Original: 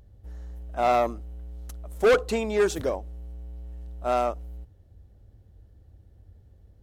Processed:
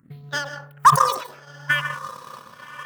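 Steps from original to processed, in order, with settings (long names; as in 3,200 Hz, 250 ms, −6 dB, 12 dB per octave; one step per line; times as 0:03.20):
high-pass filter 79 Hz 12 dB per octave
parametric band 990 Hz +2.5 dB 0.28 octaves
change of speed 2.39×
all-pass phaser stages 4, 0.6 Hz, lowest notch 170–2,300 Hz
feedback delay with all-pass diffusion 1,110 ms, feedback 50%, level −10 dB
dense smooth reverb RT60 0.51 s, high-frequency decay 0.45×, pre-delay 110 ms, DRR 3.5 dB
transient designer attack +11 dB, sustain −11 dB
level that may fall only so fast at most 95 dB per second
level −2 dB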